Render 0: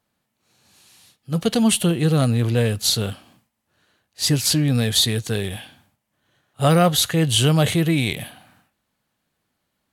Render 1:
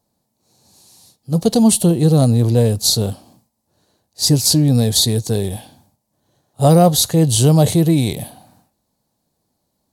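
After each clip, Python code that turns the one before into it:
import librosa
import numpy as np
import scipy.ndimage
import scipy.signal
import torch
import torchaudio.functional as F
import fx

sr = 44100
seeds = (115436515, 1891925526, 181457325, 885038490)

y = fx.band_shelf(x, sr, hz=2000.0, db=-14.0, octaves=1.7)
y = F.gain(torch.from_numpy(y), 5.5).numpy()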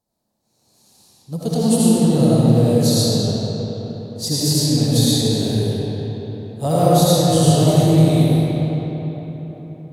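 y = fx.rev_freeverb(x, sr, rt60_s=4.3, hf_ratio=0.6, predelay_ms=40, drr_db=-9.0)
y = F.gain(torch.from_numpy(y), -10.0).numpy()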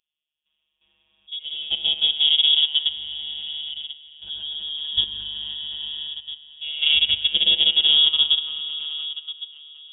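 y = fx.level_steps(x, sr, step_db=14)
y = fx.robotise(y, sr, hz=150.0)
y = fx.freq_invert(y, sr, carrier_hz=3500)
y = F.gain(torch.from_numpy(y), -1.0).numpy()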